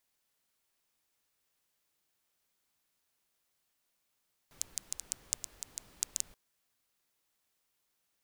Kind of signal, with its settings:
rain-like ticks over hiss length 1.83 s, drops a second 6.7, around 7,000 Hz, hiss −17.5 dB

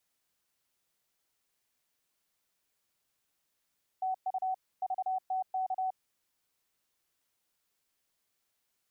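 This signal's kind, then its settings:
Morse code "TU VTK" 30 words per minute 752 Hz −29 dBFS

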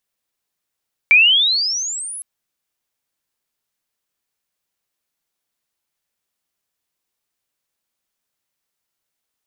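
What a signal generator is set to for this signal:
glide logarithmic 2,300 Hz → 11,000 Hz −6 dBFS → −28 dBFS 1.11 s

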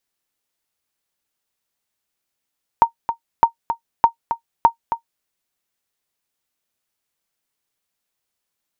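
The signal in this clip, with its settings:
ping with an echo 925 Hz, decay 0.10 s, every 0.61 s, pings 4, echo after 0.27 s, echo −9.5 dB −1.5 dBFS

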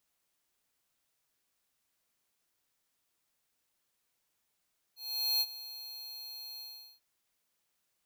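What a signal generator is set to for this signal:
note with an ADSR envelope square 4,240 Hz, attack 448 ms, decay 47 ms, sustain −16.5 dB, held 1.64 s, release 399 ms −28.5 dBFS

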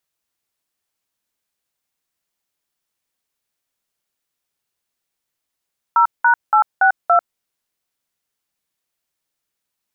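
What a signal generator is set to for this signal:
touch tones "0#862", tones 95 ms, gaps 189 ms, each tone −12 dBFS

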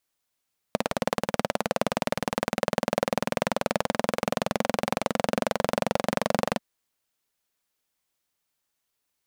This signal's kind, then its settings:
pulse-train model of a single-cylinder engine, changing speed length 5.84 s, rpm 2,200, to 2,800, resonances 220/540 Hz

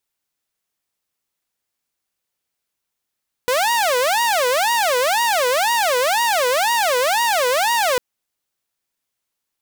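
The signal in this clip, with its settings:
siren wail 489–951 Hz 2 per second saw −13 dBFS 4.50 s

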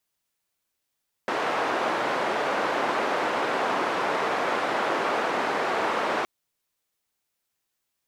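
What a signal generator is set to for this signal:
band-limited noise 370–1,100 Hz, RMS −26 dBFS 4.97 s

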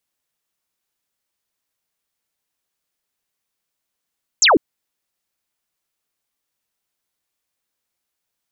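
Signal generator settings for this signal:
single falling chirp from 7,900 Hz, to 250 Hz, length 0.15 s sine, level −9 dB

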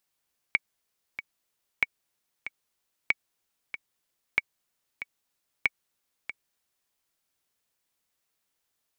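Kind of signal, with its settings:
click track 94 BPM, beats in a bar 2, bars 5, 2,250 Hz, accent 12.5 dB −8.5 dBFS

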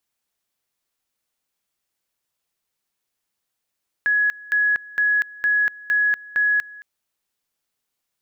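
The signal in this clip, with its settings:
tone at two levels in turn 1,680 Hz −15.5 dBFS, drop 21.5 dB, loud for 0.24 s, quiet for 0.22 s, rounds 6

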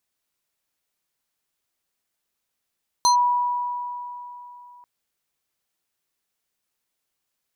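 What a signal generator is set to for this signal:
two-operator FM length 1.79 s, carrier 976 Hz, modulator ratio 5.26, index 1, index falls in 0.11 s linear, decay 3.27 s, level −13 dB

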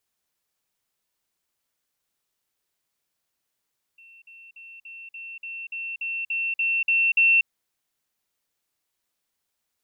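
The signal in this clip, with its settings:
level staircase 2,700 Hz −47.5 dBFS, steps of 3 dB, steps 12, 0.24 s 0.05 s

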